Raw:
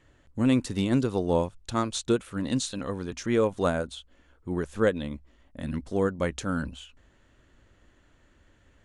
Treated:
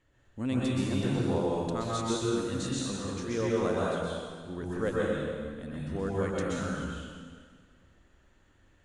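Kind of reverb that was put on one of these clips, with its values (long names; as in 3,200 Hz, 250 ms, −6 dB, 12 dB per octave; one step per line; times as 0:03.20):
dense smooth reverb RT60 1.8 s, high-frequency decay 0.9×, pre-delay 110 ms, DRR −6 dB
level −9.5 dB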